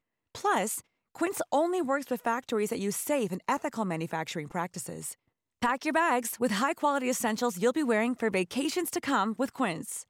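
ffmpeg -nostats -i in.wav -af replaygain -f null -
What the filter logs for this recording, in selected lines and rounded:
track_gain = +10.4 dB
track_peak = 0.123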